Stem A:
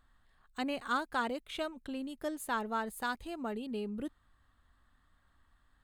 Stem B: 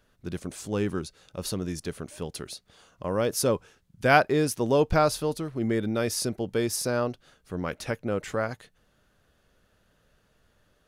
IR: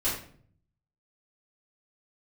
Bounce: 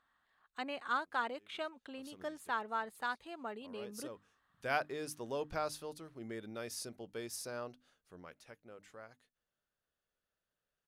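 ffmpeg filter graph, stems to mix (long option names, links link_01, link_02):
-filter_complex "[0:a]highpass=frequency=1000:poles=1,aemphasis=mode=reproduction:type=75kf,volume=2dB,asplit=2[link_01][link_02];[1:a]lowshelf=frequency=350:gain=-8.5,bandreject=frequency=50:width_type=h:width=6,bandreject=frequency=100:width_type=h:width=6,bandreject=frequency=150:width_type=h:width=6,bandreject=frequency=200:width_type=h:width=6,bandreject=frequency=250:width_type=h:width=6,bandreject=frequency=300:width_type=h:width=6,adelay=600,volume=-13.5dB,afade=type=in:start_time=1.78:duration=0.29:silence=0.421697,afade=type=out:start_time=7.92:duration=0.48:silence=0.375837[link_03];[link_02]apad=whole_len=506167[link_04];[link_03][link_04]sidechaincompress=threshold=-48dB:ratio=10:attack=6.3:release=978[link_05];[link_01][link_05]amix=inputs=2:normalize=0"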